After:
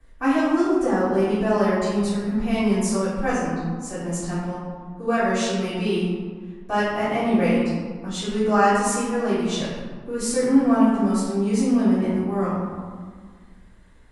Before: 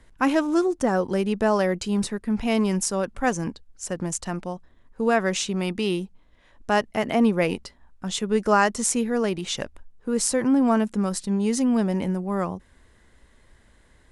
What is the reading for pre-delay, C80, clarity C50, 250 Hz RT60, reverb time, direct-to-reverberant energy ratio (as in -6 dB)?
3 ms, 1.0 dB, -1.5 dB, 2.2 s, 1.7 s, -11.5 dB